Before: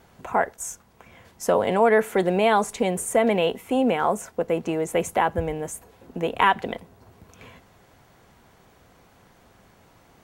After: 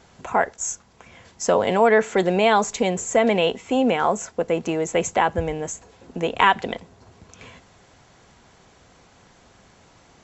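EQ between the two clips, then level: brick-wall FIR low-pass 7.8 kHz; treble shelf 4.1 kHz +9 dB; +1.5 dB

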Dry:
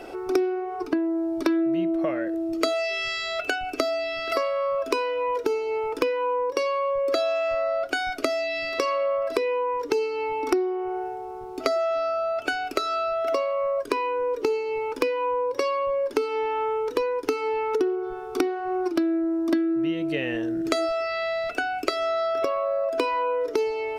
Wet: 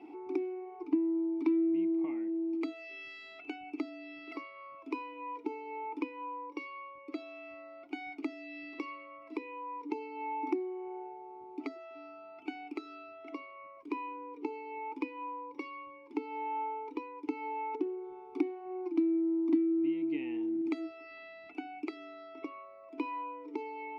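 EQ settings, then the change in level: vowel filter u; 0.0 dB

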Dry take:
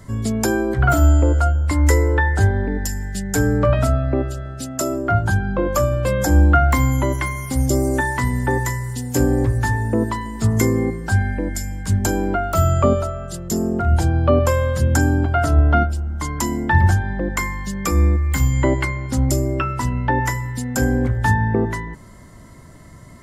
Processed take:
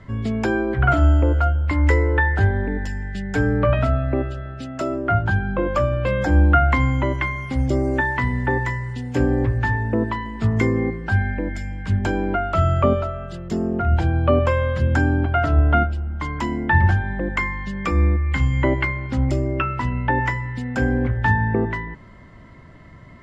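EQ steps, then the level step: resonant low-pass 2.7 kHz, resonance Q 1.6; -2.0 dB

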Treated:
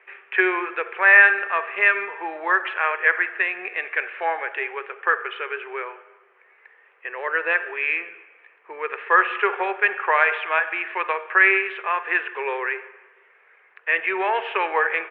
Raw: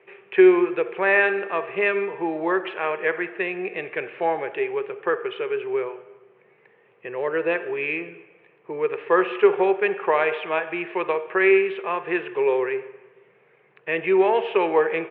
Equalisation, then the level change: high-pass 610 Hz 12 dB/octave; peaking EQ 1.6 kHz +12.5 dB 1.4 oct; -3.0 dB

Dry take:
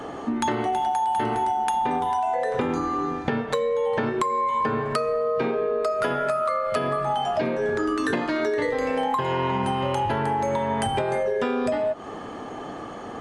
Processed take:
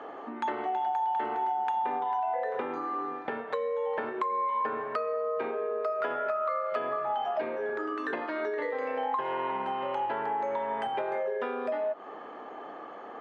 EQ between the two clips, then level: band-pass 430–2200 Hz; -5.0 dB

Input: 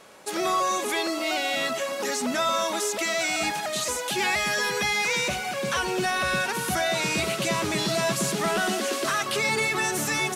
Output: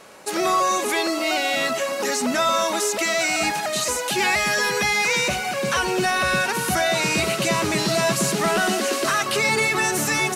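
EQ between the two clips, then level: band-stop 3.4 kHz, Q 15; +4.5 dB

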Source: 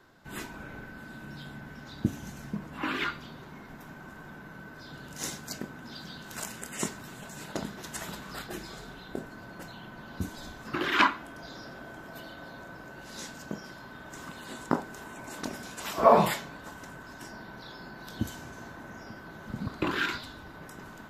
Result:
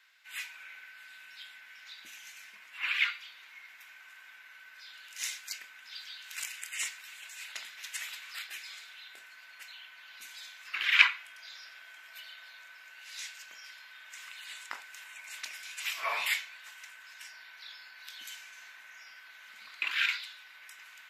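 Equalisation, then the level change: resonant high-pass 2.3 kHz, resonance Q 3.4; -1.5 dB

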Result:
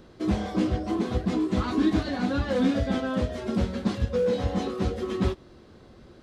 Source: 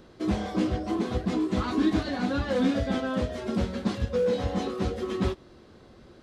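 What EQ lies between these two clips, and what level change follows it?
bass shelf 220 Hz +3 dB; 0.0 dB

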